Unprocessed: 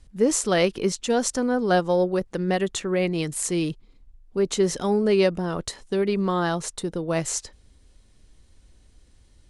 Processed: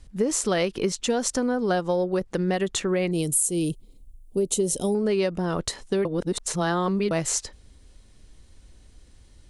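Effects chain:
0:03.11–0:04.95: drawn EQ curve 570 Hz 0 dB, 1,700 Hz −21 dB, 2,900 Hz −3 dB, 5,100 Hz −4 dB, 9,400 Hz +13 dB
0:06.05–0:07.11: reverse
downward compressor 6 to 1, threshold −24 dBFS, peak gain reduction 10 dB
level +3.5 dB

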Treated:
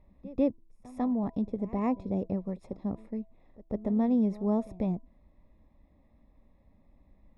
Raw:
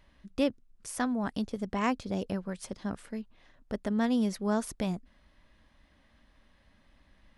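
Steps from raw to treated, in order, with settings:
moving average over 29 samples
hum removal 329.3 Hz, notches 3
echo ahead of the sound 146 ms −19.5 dB
level +2.5 dB

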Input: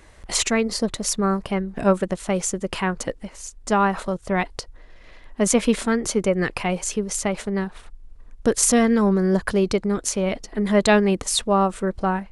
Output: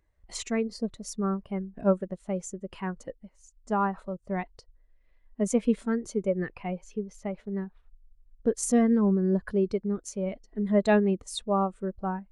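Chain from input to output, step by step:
0:06.37–0:08.57: parametric band 8,400 Hz −10 dB 1 octave
every bin expanded away from the loudest bin 1.5 to 1
level −8.5 dB

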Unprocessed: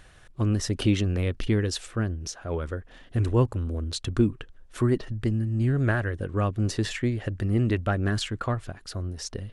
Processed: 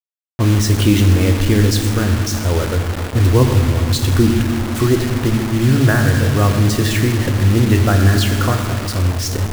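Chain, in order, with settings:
downward expander −41 dBFS
convolution reverb RT60 2.3 s, pre-delay 5 ms, DRR 4 dB
in parallel at −2 dB: brickwall limiter −20 dBFS, peak gain reduction 10.5 dB
on the sum: bit reduction 5 bits
one half of a high-frequency compander decoder only
level +5.5 dB

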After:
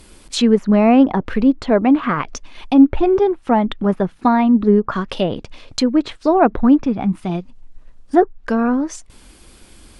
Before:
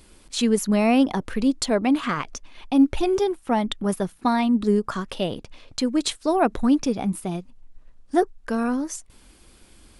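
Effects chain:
treble cut that deepens with the level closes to 1,800 Hz, closed at −20 dBFS
0:06.84–0:07.30: parametric band 480 Hz −8 dB 0.77 octaves
level +7 dB

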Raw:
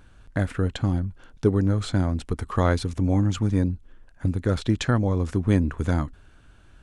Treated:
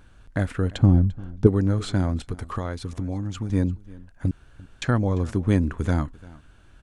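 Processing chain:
0:00.78–0:01.47: tilt shelving filter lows +8 dB
0:02.21–0:03.50: downward compressor 6 to 1, threshold −26 dBFS, peak gain reduction 10.5 dB
0:04.31–0:04.82: fill with room tone
single-tap delay 345 ms −21.5 dB

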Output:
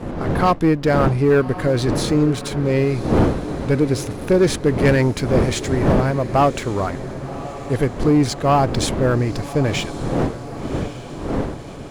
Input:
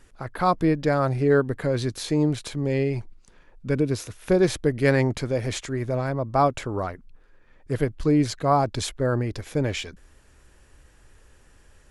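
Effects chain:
wind on the microphone 370 Hz −30 dBFS
leveller curve on the samples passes 2
feedback delay with all-pass diffusion 1,114 ms, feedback 57%, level −14 dB
level −1.5 dB

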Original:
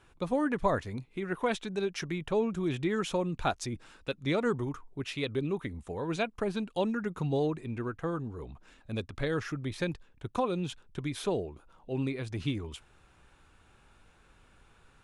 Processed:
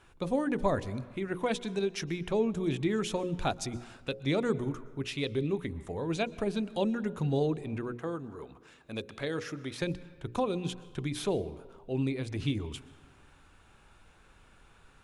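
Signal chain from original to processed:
0:07.93–0:09.82: high-pass filter 320 Hz 6 dB per octave
convolution reverb RT60 1.4 s, pre-delay 111 ms, DRR 19 dB
dynamic equaliser 1,300 Hz, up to −6 dB, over −46 dBFS, Q 0.85
mains-hum notches 60/120/180/240/300/360/420/480/540 Hz
level +2 dB

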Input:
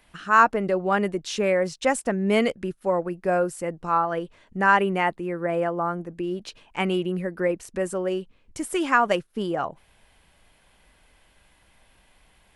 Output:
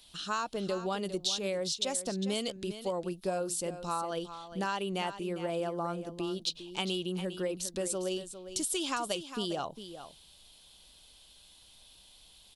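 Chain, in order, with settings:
high shelf with overshoot 2,700 Hz +11.5 dB, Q 3
downward compressor 10 to 1, threshold −23 dBFS, peak gain reduction 11 dB
on a send: single-tap delay 404 ms −11.5 dB
on the sum: level −6 dB

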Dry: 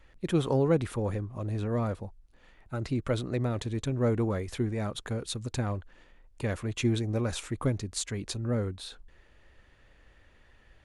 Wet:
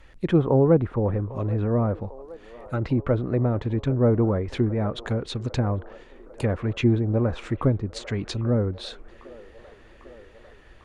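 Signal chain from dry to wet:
treble cut that deepens with the level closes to 1,100 Hz, closed at −26.5 dBFS
delay with a band-pass on its return 799 ms, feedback 72%, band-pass 820 Hz, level −17 dB
level +7 dB

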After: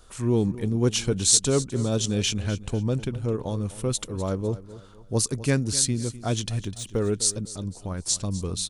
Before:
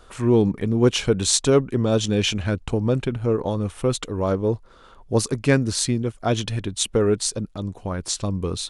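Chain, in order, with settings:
0:06.49–0:07.14: de-essing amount 85%
bass and treble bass +5 dB, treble +11 dB
on a send: repeating echo 252 ms, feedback 34%, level −16 dB
on the sum: level −7.5 dB

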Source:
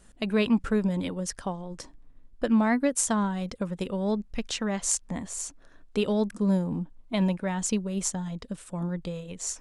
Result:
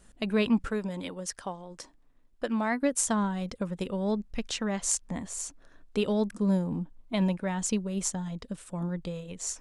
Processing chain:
0:00.68–0:02.83: low-shelf EQ 250 Hz −11 dB
level −1.5 dB

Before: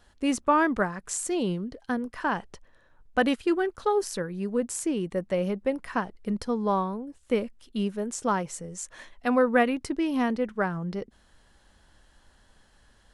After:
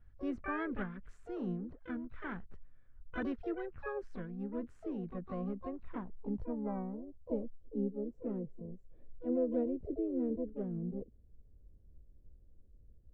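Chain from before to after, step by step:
pitch-shifted copies added +5 semitones −5 dB, +12 semitones −6 dB
guitar amp tone stack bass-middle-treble 10-0-1
low-pass filter sweep 1,400 Hz → 490 Hz, 0:05.17–0:07.88
level +6.5 dB

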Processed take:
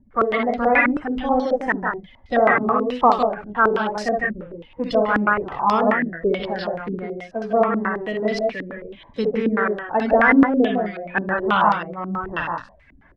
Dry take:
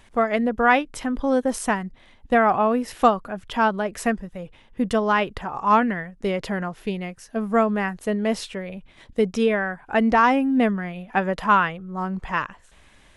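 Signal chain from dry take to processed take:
spectral magnitudes quantised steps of 30 dB
multi-tap delay 47/59/66/154/178 ms −11.5/−9/−6.5/−5/−6.5 dB
low-pass on a step sequencer 9.3 Hz 280–4,700 Hz
level −3.5 dB

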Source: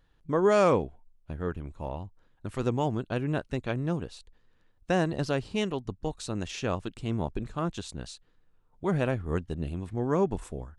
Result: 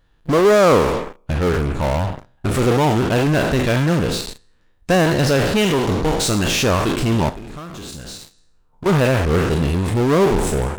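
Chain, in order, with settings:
peak hold with a decay on every bin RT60 0.61 s
in parallel at −11 dB: fuzz pedal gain 44 dB, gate −49 dBFS
0:07.29–0:08.86: on the sum: downward compressor 12 to 1, threshold −36 dBFS, peak gain reduction 17.5 dB
level +5 dB

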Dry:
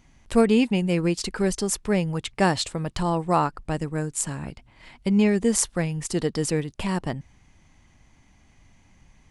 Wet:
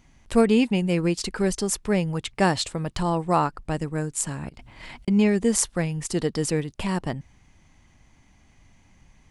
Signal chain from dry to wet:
0:04.49–0:05.08: compressor whose output falls as the input rises −46 dBFS, ratio −0.5

